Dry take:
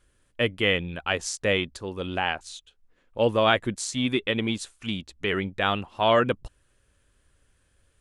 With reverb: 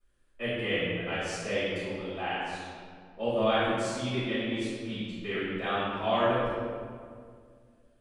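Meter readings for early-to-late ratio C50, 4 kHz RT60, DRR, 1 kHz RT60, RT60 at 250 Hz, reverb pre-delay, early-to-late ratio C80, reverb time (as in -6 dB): -4.0 dB, 1.2 s, -18.5 dB, 2.0 s, 2.6 s, 3 ms, -1.0 dB, 2.1 s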